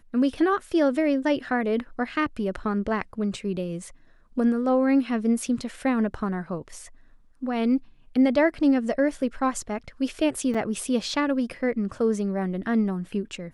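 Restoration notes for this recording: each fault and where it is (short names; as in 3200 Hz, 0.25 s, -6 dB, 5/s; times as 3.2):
10.54–10.55 gap 5.7 ms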